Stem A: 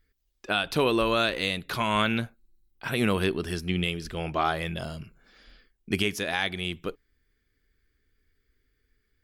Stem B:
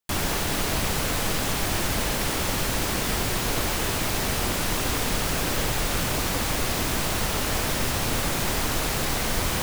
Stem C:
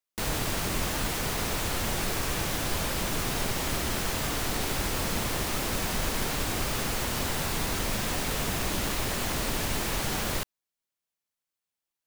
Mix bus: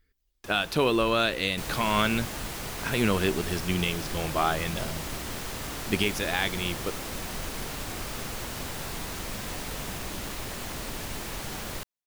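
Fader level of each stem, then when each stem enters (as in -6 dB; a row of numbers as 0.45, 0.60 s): 0.0, -19.5, -6.0 dB; 0.00, 0.35, 1.40 s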